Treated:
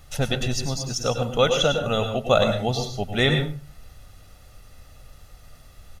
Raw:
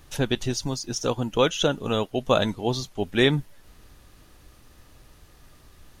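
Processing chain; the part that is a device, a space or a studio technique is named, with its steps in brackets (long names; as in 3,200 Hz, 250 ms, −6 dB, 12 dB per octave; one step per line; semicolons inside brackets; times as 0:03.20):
microphone above a desk (comb filter 1.5 ms, depth 61%; convolution reverb RT60 0.35 s, pre-delay 93 ms, DRR 5 dB)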